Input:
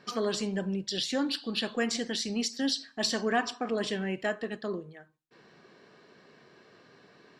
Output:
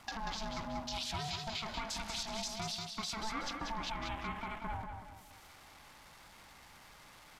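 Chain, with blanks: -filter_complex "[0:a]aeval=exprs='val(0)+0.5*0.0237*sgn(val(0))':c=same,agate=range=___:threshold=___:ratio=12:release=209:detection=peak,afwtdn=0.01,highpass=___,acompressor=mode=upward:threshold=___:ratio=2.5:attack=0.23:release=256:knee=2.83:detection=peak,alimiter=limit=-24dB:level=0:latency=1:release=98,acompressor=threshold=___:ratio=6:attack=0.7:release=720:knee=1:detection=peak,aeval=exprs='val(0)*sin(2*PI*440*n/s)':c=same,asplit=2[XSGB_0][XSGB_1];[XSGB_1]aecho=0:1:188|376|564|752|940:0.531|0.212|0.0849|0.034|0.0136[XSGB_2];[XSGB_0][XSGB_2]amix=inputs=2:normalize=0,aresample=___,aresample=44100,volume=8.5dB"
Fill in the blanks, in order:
-16dB, -34dB, 380, -51dB, -40dB, 32000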